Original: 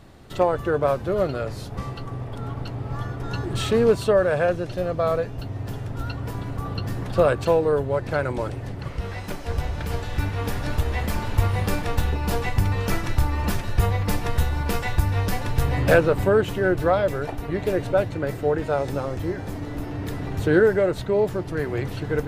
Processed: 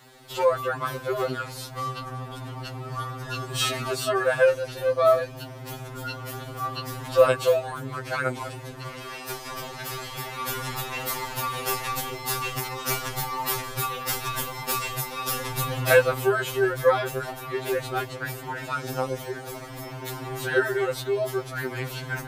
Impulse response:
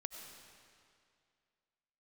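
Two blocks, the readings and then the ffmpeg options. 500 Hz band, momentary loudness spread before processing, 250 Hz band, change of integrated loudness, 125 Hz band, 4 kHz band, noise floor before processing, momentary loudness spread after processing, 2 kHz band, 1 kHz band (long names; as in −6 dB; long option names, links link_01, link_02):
−3.0 dB, 12 LU, −9.5 dB, −2.5 dB, −9.5 dB, +4.0 dB, −34 dBFS, 15 LU, +1.0 dB, +0.5 dB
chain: -af "lowpass=frequency=3500:poles=1,aemphasis=mode=production:type=riaa,afftfilt=real='re*2.45*eq(mod(b,6),0)':imag='im*2.45*eq(mod(b,6),0)':win_size=2048:overlap=0.75,volume=3.5dB"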